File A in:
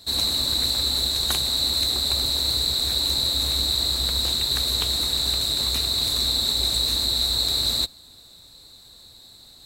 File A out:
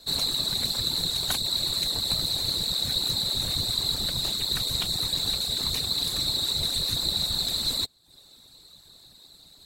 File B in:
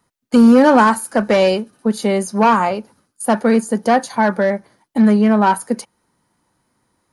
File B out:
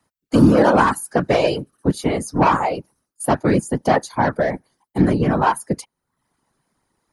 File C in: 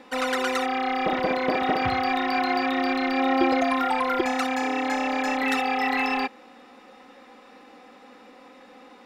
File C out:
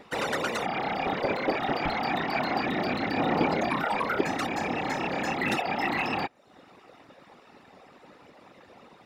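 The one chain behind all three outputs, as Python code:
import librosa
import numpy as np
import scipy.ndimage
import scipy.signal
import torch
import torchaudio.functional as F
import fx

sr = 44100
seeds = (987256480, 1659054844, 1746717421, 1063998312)

y = fx.dereverb_blind(x, sr, rt60_s=0.58)
y = fx.whisperise(y, sr, seeds[0])
y = y * 10.0 ** (-2.5 / 20.0)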